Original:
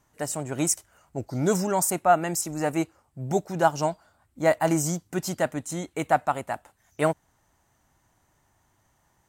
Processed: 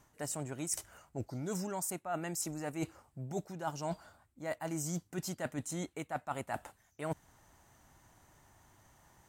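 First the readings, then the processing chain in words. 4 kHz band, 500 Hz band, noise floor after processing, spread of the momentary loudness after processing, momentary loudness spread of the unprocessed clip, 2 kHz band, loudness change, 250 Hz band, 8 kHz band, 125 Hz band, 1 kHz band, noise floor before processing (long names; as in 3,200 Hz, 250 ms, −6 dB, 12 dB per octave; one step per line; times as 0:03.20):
−10.0 dB, −15.0 dB, −71 dBFS, 7 LU, 12 LU, −13.5 dB, −13.5 dB, −11.5 dB, −10.5 dB, −10.0 dB, −16.0 dB, −69 dBFS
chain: dynamic equaliser 650 Hz, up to −3 dB, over −34 dBFS, Q 0.73
reversed playback
downward compressor 12 to 1, threshold −38 dBFS, peak gain reduction 22 dB
reversed playback
level +3.5 dB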